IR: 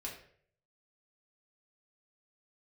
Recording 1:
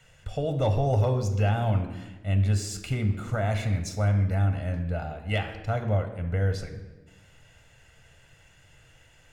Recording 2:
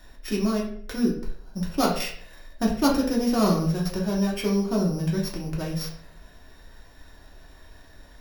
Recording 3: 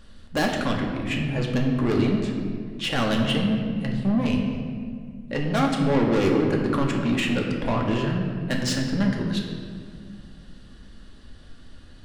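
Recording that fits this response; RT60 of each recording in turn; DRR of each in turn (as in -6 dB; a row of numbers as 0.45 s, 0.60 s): 2; 1.2 s, 0.60 s, 2.1 s; 6.0 dB, -3.5 dB, 0.5 dB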